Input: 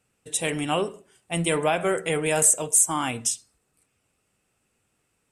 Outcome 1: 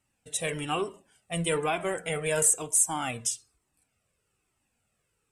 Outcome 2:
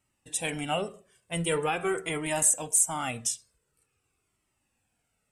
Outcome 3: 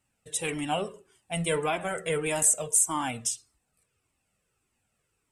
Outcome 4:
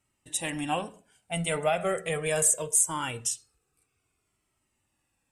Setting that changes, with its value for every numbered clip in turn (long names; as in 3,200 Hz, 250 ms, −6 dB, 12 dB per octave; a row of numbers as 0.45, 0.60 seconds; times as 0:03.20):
flanger whose copies keep moving one way, speed: 1.1, 0.45, 1.7, 0.22 Hertz